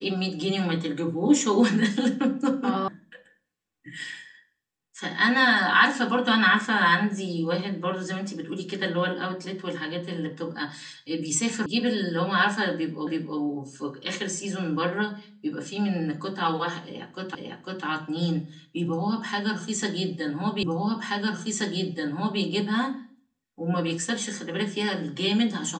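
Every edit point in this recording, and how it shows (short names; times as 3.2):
2.88 sound cut off
11.66 sound cut off
13.07 repeat of the last 0.32 s
17.35 repeat of the last 0.5 s
20.63 repeat of the last 1.78 s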